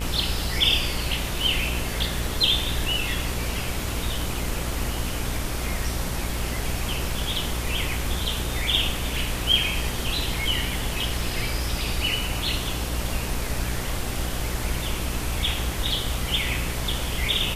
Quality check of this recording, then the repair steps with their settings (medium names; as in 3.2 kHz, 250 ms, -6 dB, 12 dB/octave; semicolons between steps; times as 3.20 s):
buzz 60 Hz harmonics 33 -31 dBFS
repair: de-hum 60 Hz, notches 33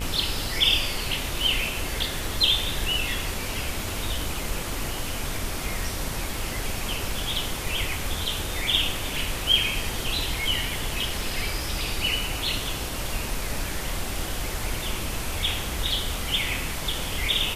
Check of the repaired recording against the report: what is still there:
nothing left